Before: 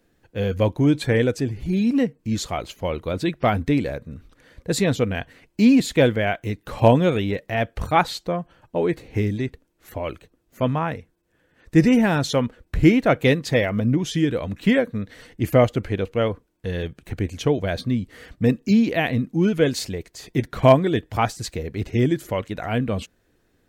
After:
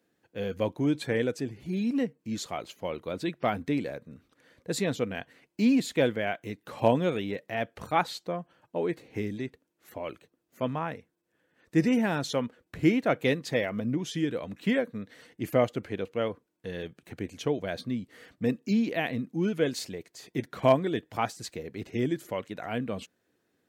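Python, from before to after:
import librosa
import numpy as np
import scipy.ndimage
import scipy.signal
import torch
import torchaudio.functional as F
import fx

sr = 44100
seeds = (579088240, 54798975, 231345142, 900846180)

y = scipy.signal.sosfilt(scipy.signal.butter(2, 160.0, 'highpass', fs=sr, output='sos'), x)
y = y * 10.0 ** (-7.5 / 20.0)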